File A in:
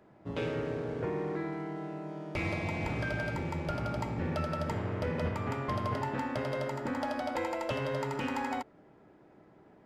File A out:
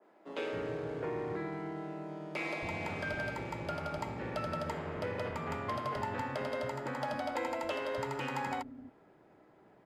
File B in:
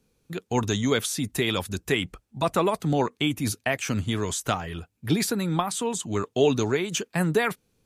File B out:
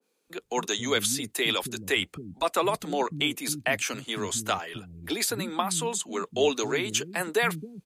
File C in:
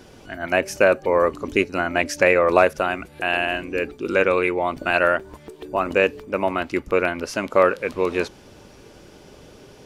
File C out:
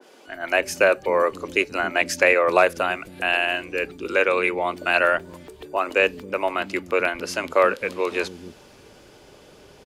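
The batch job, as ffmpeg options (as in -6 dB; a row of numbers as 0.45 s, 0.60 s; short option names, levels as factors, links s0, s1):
-filter_complex "[0:a]lowshelf=f=160:g=-6,bandreject=f=5700:w=19,acrossover=split=190|1500|1900[s0][s1][s2][s3];[s0]acompressor=threshold=0.00794:ratio=6[s4];[s4][s1][s2][s3]amix=inputs=4:normalize=0,acrossover=split=250[s5][s6];[s5]adelay=270[s7];[s7][s6]amix=inputs=2:normalize=0,adynamicequalizer=threshold=0.0224:dfrequency=1800:dqfactor=0.7:tfrequency=1800:tqfactor=0.7:attack=5:release=100:ratio=0.375:range=2:mode=boostabove:tftype=highshelf,volume=0.891"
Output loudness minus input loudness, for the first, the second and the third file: -3.0 LU, -1.5 LU, -1.0 LU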